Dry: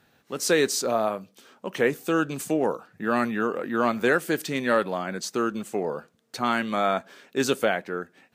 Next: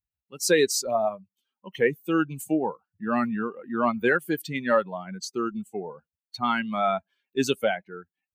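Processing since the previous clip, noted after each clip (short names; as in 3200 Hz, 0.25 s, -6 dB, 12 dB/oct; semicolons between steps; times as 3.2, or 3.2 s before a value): per-bin expansion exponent 2; gain +3.5 dB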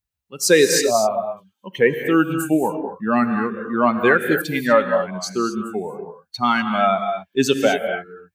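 non-linear reverb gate 0.27 s rising, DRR 6 dB; gain +6.5 dB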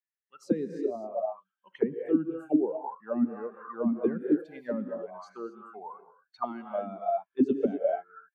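auto-wah 210–1800 Hz, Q 7, down, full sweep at -11.5 dBFS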